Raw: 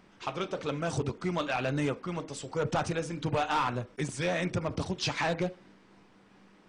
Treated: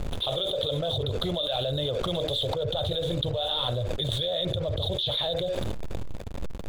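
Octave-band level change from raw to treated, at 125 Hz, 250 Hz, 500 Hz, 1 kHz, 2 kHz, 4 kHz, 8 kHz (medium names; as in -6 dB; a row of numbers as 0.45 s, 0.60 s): +4.0 dB, -2.0 dB, +5.0 dB, -4.0 dB, -9.5 dB, +13.5 dB, -5.5 dB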